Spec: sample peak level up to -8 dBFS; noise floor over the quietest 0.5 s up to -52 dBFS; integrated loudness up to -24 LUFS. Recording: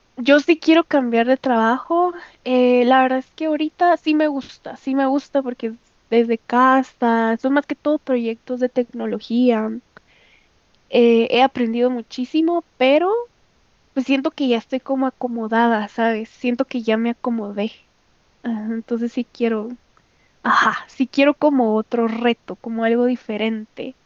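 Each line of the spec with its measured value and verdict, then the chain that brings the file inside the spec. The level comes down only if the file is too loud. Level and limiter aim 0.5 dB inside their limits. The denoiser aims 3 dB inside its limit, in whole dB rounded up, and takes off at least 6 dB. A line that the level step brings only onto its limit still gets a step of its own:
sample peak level -3.0 dBFS: fail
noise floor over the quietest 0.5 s -59 dBFS: pass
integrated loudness -19.0 LUFS: fail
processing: trim -5.5 dB

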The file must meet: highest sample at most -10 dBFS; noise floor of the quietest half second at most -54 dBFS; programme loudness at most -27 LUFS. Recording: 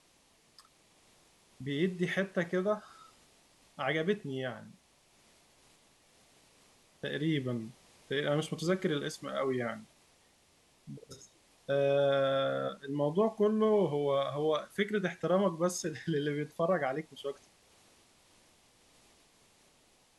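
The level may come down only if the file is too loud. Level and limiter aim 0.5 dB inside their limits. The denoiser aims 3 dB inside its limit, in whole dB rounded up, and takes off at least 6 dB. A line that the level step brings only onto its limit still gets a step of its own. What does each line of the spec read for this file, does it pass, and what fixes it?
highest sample -17.0 dBFS: pass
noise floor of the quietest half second -67 dBFS: pass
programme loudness -32.5 LUFS: pass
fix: none needed

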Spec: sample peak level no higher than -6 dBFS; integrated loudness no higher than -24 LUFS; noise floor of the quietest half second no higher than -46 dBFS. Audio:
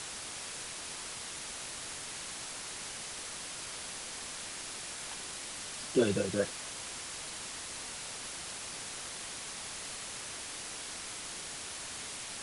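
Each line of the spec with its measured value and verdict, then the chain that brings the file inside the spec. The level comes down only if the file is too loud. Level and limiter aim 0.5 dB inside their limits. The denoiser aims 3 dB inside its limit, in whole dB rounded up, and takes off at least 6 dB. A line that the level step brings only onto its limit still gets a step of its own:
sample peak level -16.0 dBFS: pass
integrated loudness -38.0 LUFS: pass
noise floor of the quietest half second -43 dBFS: fail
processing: noise reduction 6 dB, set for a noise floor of -43 dBFS

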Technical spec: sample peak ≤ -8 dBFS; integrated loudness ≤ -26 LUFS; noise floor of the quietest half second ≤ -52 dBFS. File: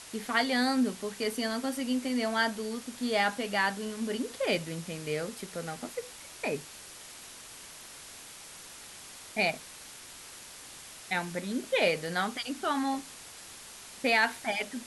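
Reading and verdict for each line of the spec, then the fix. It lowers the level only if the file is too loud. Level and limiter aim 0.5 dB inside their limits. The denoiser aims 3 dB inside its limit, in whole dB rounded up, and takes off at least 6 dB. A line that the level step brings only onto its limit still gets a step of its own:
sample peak -12.0 dBFS: pass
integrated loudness -31.0 LUFS: pass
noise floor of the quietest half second -48 dBFS: fail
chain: noise reduction 7 dB, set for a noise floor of -48 dBFS

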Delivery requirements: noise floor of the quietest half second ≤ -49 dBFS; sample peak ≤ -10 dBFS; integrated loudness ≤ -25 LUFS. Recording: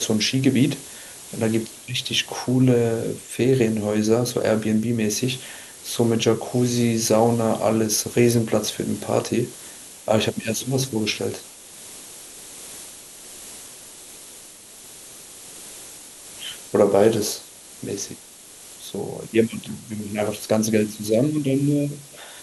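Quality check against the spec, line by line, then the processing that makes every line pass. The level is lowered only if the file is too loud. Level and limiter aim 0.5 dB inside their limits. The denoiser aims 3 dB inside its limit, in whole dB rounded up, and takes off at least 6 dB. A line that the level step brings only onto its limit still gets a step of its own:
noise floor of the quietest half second -44 dBFS: fail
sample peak -4.5 dBFS: fail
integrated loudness -22.0 LUFS: fail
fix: noise reduction 6 dB, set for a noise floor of -44 dBFS; trim -3.5 dB; peak limiter -10.5 dBFS

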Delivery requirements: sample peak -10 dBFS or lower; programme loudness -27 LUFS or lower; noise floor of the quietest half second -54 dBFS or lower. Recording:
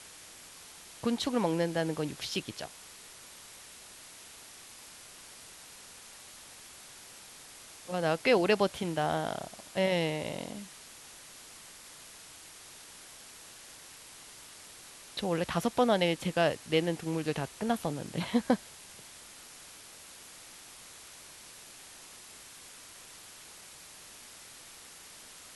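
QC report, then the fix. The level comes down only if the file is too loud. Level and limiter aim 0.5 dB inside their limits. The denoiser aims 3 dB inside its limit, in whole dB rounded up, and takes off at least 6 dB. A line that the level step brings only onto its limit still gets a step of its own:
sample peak -13.5 dBFS: pass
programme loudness -31.0 LUFS: pass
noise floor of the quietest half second -51 dBFS: fail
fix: noise reduction 6 dB, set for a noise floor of -51 dBFS

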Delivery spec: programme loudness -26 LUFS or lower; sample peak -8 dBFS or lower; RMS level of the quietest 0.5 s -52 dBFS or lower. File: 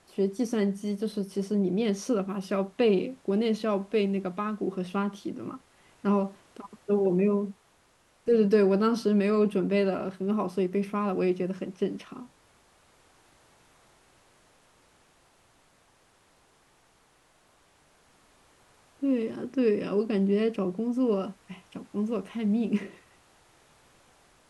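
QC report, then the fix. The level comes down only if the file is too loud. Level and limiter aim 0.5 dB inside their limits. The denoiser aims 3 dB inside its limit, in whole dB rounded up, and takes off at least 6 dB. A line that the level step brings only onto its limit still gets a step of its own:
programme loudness -28.0 LUFS: pass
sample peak -11.0 dBFS: pass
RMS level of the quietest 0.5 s -64 dBFS: pass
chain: none needed

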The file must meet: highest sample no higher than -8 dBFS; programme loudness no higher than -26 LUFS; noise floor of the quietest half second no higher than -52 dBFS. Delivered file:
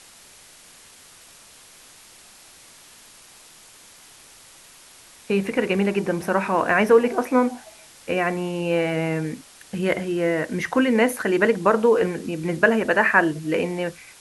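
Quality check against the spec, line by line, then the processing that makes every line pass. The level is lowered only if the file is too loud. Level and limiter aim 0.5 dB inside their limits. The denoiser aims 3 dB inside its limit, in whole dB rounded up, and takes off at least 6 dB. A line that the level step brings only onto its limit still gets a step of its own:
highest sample -4.0 dBFS: fail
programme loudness -21.5 LUFS: fail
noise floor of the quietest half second -49 dBFS: fail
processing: trim -5 dB

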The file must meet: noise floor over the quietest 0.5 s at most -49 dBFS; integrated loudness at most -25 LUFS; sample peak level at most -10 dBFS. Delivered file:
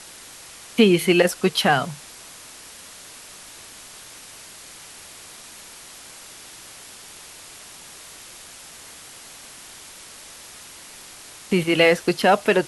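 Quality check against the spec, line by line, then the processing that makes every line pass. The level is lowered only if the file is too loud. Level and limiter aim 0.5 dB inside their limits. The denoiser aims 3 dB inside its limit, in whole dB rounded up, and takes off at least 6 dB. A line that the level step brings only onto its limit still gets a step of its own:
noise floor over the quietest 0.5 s -43 dBFS: fail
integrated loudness -19.0 LUFS: fail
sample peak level -3.5 dBFS: fail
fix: trim -6.5 dB; peak limiter -10.5 dBFS

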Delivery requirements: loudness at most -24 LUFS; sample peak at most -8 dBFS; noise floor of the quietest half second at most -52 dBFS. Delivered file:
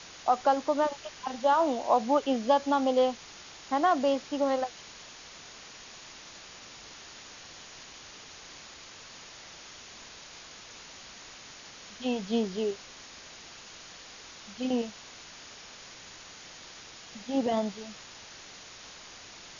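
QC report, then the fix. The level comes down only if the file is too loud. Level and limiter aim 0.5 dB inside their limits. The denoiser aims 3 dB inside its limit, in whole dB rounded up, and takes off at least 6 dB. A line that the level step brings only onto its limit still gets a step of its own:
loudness -28.5 LUFS: pass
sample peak -11.0 dBFS: pass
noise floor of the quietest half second -48 dBFS: fail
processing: noise reduction 7 dB, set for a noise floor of -48 dBFS

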